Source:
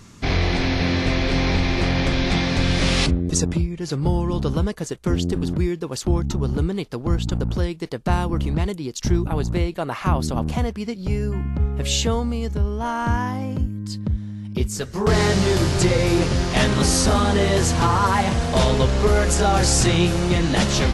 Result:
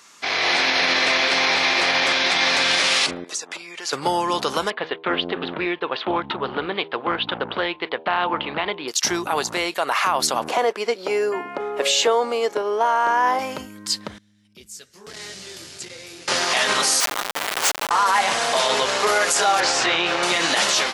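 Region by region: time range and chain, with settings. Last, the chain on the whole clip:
0:03.24–0:03.93: meter weighting curve A + downward compressor 8 to 1, threshold −35 dBFS
0:04.70–0:08.88: Butterworth low-pass 3,600 Hz 48 dB per octave + hum removal 80.54 Hz, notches 13 + highs frequency-modulated by the lows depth 0.21 ms
0:10.48–0:13.39: high-pass with resonance 410 Hz, resonance Q 1.7 + spectral tilt −2.5 dB per octave
0:14.18–0:16.28: guitar amp tone stack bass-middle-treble 10-0-1 + saturating transformer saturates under 73 Hz
0:17.00–0:17.91: Chebyshev high-pass filter 2,200 Hz + high-shelf EQ 6,300 Hz +6 dB + comparator with hysteresis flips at −21.5 dBFS
0:19.60–0:20.23: low-pass filter 3,300 Hz + notch filter 190 Hz, Q 6.3
whole clip: high-pass filter 810 Hz 12 dB per octave; automatic gain control gain up to 11 dB; brickwall limiter −12 dBFS; level +2.5 dB

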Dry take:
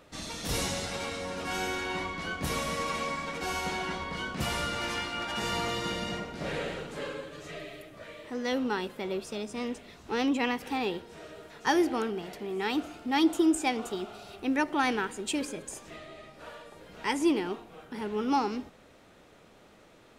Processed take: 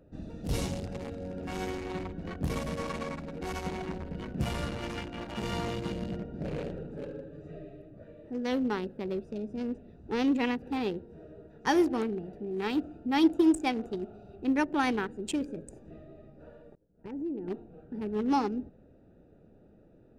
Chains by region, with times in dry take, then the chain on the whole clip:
0:16.75–0:17.48: downward expander −38 dBFS + low-pass filter 1,000 Hz 6 dB per octave + downward compressor 3 to 1, threshold −35 dBFS
whole clip: adaptive Wiener filter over 41 samples; low-shelf EQ 350 Hz +6 dB; level −1.5 dB

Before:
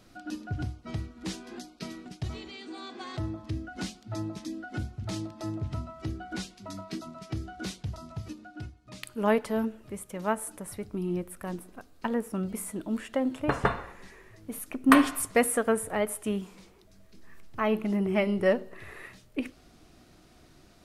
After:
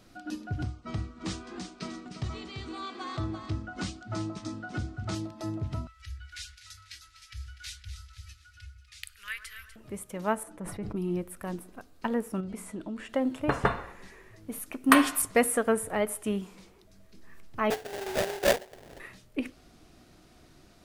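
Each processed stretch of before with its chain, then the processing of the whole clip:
0:00.63–0:05.15: Butterworth low-pass 9,400 Hz 72 dB per octave + parametric band 1,200 Hz +9 dB 0.26 octaves + single-tap delay 339 ms −8 dB
0:05.87–0:09.76: inverse Chebyshev band-stop filter 140–900 Hz + delay that swaps between a low-pass and a high-pass 123 ms, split 1,500 Hz, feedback 67%, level −8.5 dB
0:10.43–0:10.96: low-pass filter 1,600 Hz 6 dB per octave + comb filter 6 ms, depth 38% + level that may fall only so fast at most 37 dB per second
0:12.40–0:13.09: high-frequency loss of the air 55 metres + downward compressor 10 to 1, threshold −32 dBFS
0:14.72–0:15.22: spectral tilt +1.5 dB per octave + double-tracking delay 14 ms −14 dB
0:17.70–0:19.00: Chebyshev band-pass filter 390–1,900 Hz, order 5 + sample-rate reduction 1,200 Hz, jitter 20%
whole clip: no processing

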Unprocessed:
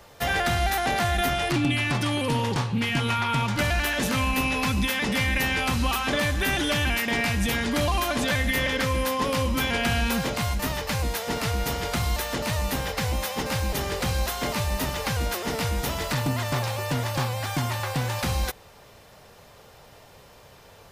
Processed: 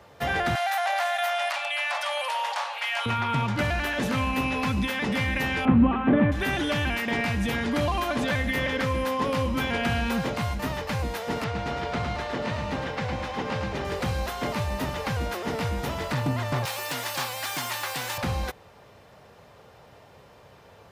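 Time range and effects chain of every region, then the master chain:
0:00.55–0:03.06: Chebyshev high-pass filter 580 Hz, order 6 + high-shelf EQ 6,300 Hz +4.5 dB + envelope flattener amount 50%
0:05.65–0:06.32: Bessel low-pass filter 1,700 Hz, order 8 + parametric band 230 Hz +12.5 dB 1.5 octaves
0:11.44–0:13.85: high-pass filter 120 Hz 6 dB per octave + high-frequency loss of the air 94 metres + feedback echo at a low word length 109 ms, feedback 35%, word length 9 bits, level −5 dB
0:16.65–0:18.18: high-pass filter 110 Hz + spectral tilt +4.5 dB per octave + gain into a clipping stage and back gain 16.5 dB
whole clip: high-pass filter 68 Hz; high-shelf EQ 4,000 Hz −12 dB

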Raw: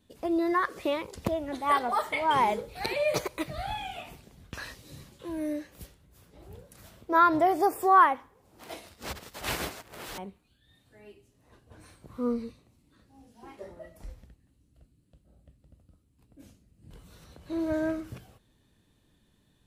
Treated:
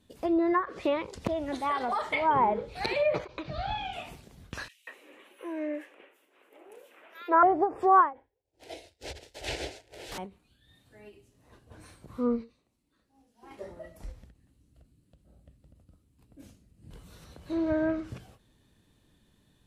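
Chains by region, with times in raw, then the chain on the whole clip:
0:01.27–0:02.01: downward compressor, threshold −27 dBFS + high-shelf EQ 7,800 Hz +11 dB
0:03.25–0:03.93: low-pass filter 5,400 Hz 24 dB per octave + notch filter 2,000 Hz, Q 6.2
0:04.68–0:07.43: inverse Chebyshev high-pass filter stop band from 160 Hz + high shelf with overshoot 3,500 Hz −9.5 dB, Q 3 + multiband delay without the direct sound highs, lows 190 ms, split 3,100 Hz
0:08.13–0:10.12: high-frequency loss of the air 50 metres + downward expander −50 dBFS + phaser with its sweep stopped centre 480 Hz, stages 4
0:12.41–0:13.51: parametric band 100 Hz −9 dB 1.8 octaves + expander for the loud parts, over −59 dBFS
whole clip: treble cut that deepens with the level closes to 1,200 Hz, closed at −21 dBFS; every ending faded ahead of time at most 220 dB per second; level +1.5 dB

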